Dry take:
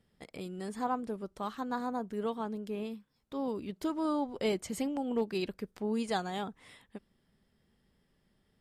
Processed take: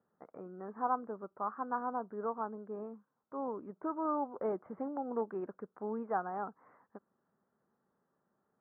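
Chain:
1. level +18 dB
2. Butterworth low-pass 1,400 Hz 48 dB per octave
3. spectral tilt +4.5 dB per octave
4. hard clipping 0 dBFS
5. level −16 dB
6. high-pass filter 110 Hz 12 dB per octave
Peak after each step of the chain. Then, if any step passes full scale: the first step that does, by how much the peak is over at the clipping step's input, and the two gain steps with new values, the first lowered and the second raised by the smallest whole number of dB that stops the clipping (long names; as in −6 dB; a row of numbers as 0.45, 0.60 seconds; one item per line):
−2.5, −2.0, −5.0, −5.0, −21.0, −21.0 dBFS
no step passes full scale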